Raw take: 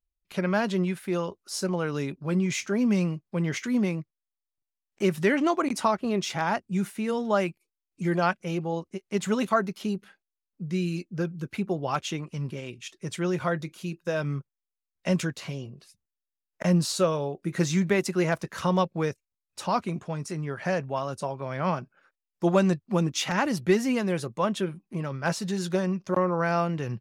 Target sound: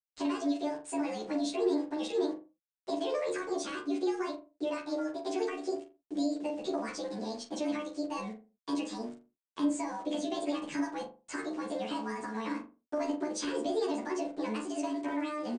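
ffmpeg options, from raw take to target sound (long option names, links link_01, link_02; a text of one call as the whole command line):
ffmpeg -i in.wav -filter_complex "[0:a]afftfilt=real='re':imag='-im':win_size=2048:overlap=0.75,equalizer=frequency=170:width=1.1:gain=3,alimiter=limit=-23.5dB:level=0:latency=1:release=474,acrossover=split=350|3000[link_01][link_02][link_03];[link_02]acompressor=threshold=-42dB:ratio=6[link_04];[link_01][link_04][link_03]amix=inputs=3:normalize=0,aresample=11025,aeval=exprs='val(0)*gte(abs(val(0)),0.00211)':channel_layout=same,aresample=44100,asplit=2[link_05][link_06];[link_06]adelay=20,volume=-7.5dB[link_07];[link_05][link_07]amix=inputs=2:normalize=0,asplit=2[link_08][link_09];[link_09]adelay=72,lowpass=frequency=870:poles=1,volume=-3dB,asplit=2[link_10][link_11];[link_11]adelay=72,lowpass=frequency=870:poles=1,volume=0.46,asplit=2[link_12][link_13];[link_13]adelay=72,lowpass=frequency=870:poles=1,volume=0.46,asplit=2[link_14][link_15];[link_15]adelay=72,lowpass=frequency=870:poles=1,volume=0.46,asplit=2[link_16][link_17];[link_17]adelay=72,lowpass=frequency=870:poles=1,volume=0.46,asplit=2[link_18][link_19];[link_19]adelay=72,lowpass=frequency=870:poles=1,volume=0.46[link_20];[link_08][link_10][link_12][link_14][link_16][link_18][link_20]amix=inputs=7:normalize=0,asetrate=76440,aresample=44100,volume=1dB" out.wav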